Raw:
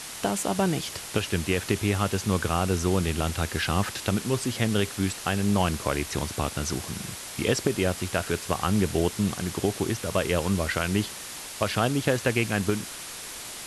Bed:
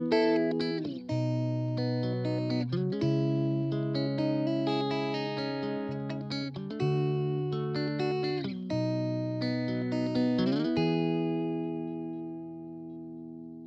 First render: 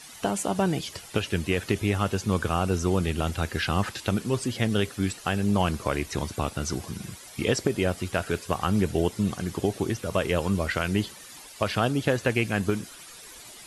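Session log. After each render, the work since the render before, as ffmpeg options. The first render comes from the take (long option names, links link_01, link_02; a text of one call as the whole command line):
ffmpeg -i in.wav -af "afftdn=noise_reduction=12:noise_floor=-39" out.wav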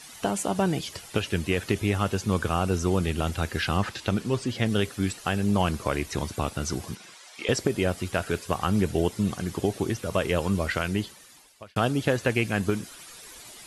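ffmpeg -i in.wav -filter_complex "[0:a]asettb=1/sr,asplit=3[link_01][link_02][link_03];[link_01]atrim=end=3.774[link_04];[link_02]atrim=start=3.77:end=4.66,asetpts=PTS-STARTPTS,afade=type=in:duration=0.004:curve=qsin,afade=type=out:start_time=0.886:duration=0.004:curve=qsin,acrossover=split=6800[link_05][link_06];[link_06]acompressor=threshold=-52dB:ratio=4:attack=1:release=60[link_07];[link_05][link_07]amix=inputs=2:normalize=0[link_08];[link_03]atrim=start=4.656[link_09];[link_04][link_08]acrossfade=duration=0.004:curve1=hsin:curve2=qsin[link_10];[link_10][link_09]acrossfade=duration=0.004:curve1=qsin:curve2=hsin,asettb=1/sr,asplit=3[link_11][link_12][link_13];[link_11]atrim=end=6.954[link_14];[link_12]atrim=start=6.95:end=7.49,asetpts=PTS-STARTPTS,afade=type=in:duration=0.004:curve=qsin,afade=type=out:start_time=0.536:duration=0.004:curve=qsin,highpass=640,lowpass=6600[link_15];[link_13]atrim=start=7.486[link_16];[link_14][link_15]acrossfade=duration=0.004:curve1=hsin:curve2=qsin[link_17];[link_17][link_16]acrossfade=duration=0.004:curve1=qsin:curve2=hsin,asplit=2[link_18][link_19];[link_18]atrim=end=11.76,asetpts=PTS-STARTPTS,afade=type=out:start_time=10.75:duration=1.01[link_20];[link_19]atrim=start=11.76,asetpts=PTS-STARTPTS,afade=type=in:duration=0.004:curve=hsin[link_21];[link_20][link_21]concat=n=2:v=0:a=1" out.wav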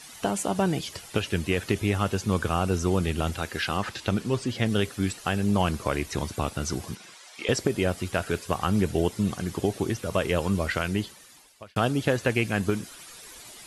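ffmpeg -i in.wav -filter_complex "[0:a]asettb=1/sr,asplit=3[link_01][link_02][link_03];[link_01]atrim=end=3.374[link_04];[link_02]atrim=start=3.37:end=3.87,asetpts=PTS-STARTPTS,afade=type=in:duration=0.004:curve=qsin,afade=type=out:start_time=0.496:duration=0.004:curve=qsin,equalizer=frequency=60:width=0.3:gain=-8[link_05];[link_03]atrim=start=3.866[link_06];[link_04][link_05]acrossfade=duration=0.004:curve1=hsin:curve2=qsin[link_07];[link_07][link_06]acrossfade=duration=0.004:curve1=qsin:curve2=hsin" out.wav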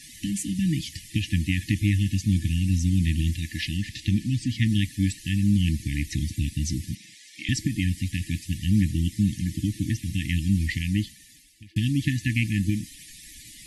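ffmpeg -i in.wav -af "afftfilt=real='re*(1-between(b*sr/4096,330,1700))':imag='im*(1-between(b*sr/4096,330,1700))':win_size=4096:overlap=0.75,lowshelf=frequency=130:gain=9.5" out.wav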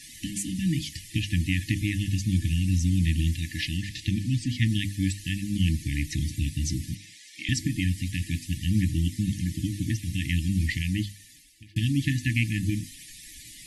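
ffmpeg -i in.wav -af "equalizer=frequency=210:width=5.8:gain=-4.5,bandreject=frequency=50:width_type=h:width=6,bandreject=frequency=100:width_type=h:width=6,bandreject=frequency=150:width_type=h:width=6,bandreject=frequency=200:width_type=h:width=6,bandreject=frequency=250:width_type=h:width=6,bandreject=frequency=300:width_type=h:width=6" out.wav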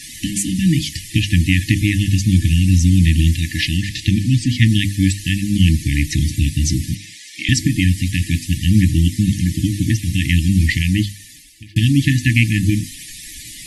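ffmpeg -i in.wav -af "volume=11dB,alimiter=limit=-2dB:level=0:latency=1" out.wav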